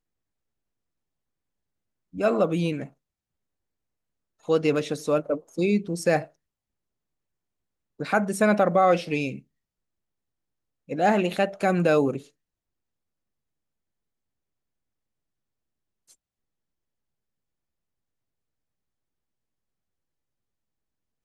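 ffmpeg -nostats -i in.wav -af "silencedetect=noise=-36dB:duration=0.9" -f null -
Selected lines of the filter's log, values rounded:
silence_start: 0.00
silence_end: 2.15 | silence_duration: 2.15
silence_start: 2.86
silence_end: 4.49 | silence_duration: 1.63
silence_start: 6.24
silence_end: 8.00 | silence_duration: 1.76
silence_start: 9.39
silence_end: 10.89 | silence_duration: 1.50
silence_start: 12.19
silence_end: 21.24 | silence_duration: 9.05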